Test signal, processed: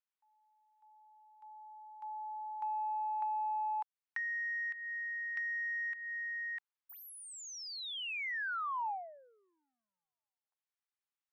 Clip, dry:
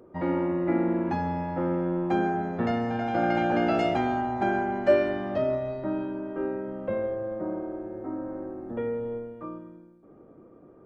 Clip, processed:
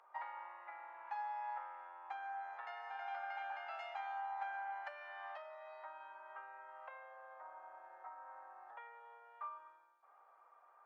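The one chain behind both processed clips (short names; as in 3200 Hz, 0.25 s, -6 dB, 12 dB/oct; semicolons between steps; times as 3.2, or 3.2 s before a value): compressor 10:1, threshold -36 dBFS; overdrive pedal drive 8 dB, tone 1300 Hz, clips at -23.5 dBFS; Chebyshev high-pass 830 Hz, order 4; gain +1 dB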